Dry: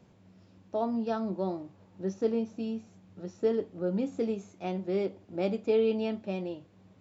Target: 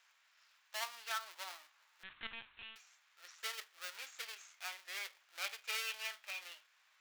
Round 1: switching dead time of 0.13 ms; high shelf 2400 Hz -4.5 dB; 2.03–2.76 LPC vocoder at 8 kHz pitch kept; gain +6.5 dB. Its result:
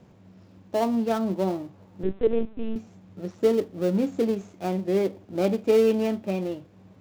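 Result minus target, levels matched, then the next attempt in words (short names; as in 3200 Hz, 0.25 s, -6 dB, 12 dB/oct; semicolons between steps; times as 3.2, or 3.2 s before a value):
1000 Hz band -4.0 dB
switching dead time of 0.13 ms; HPF 1400 Hz 24 dB/oct; high shelf 2400 Hz -4.5 dB; 2.03–2.76 LPC vocoder at 8 kHz pitch kept; gain +6.5 dB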